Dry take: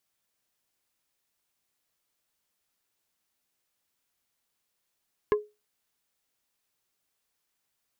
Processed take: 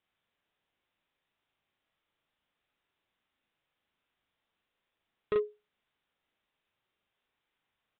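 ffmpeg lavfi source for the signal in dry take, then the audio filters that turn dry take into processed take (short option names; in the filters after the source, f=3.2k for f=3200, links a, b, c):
-f lavfi -i "aevalsrc='0.15*pow(10,-3*t/0.24)*sin(2*PI*420*t)+0.075*pow(10,-3*t/0.08)*sin(2*PI*1050*t)+0.0376*pow(10,-3*t/0.045)*sin(2*PI*1680*t)+0.0188*pow(10,-3*t/0.035)*sin(2*PI*2100*t)+0.00944*pow(10,-3*t/0.025)*sin(2*PI*2730*t)':d=0.45:s=44100"
-filter_complex "[0:a]aresample=8000,volume=26.5dB,asoftclip=hard,volume=-26.5dB,aresample=44100,asplit=2[a][b];[b]adelay=38,volume=-2dB[c];[a][c]amix=inputs=2:normalize=0"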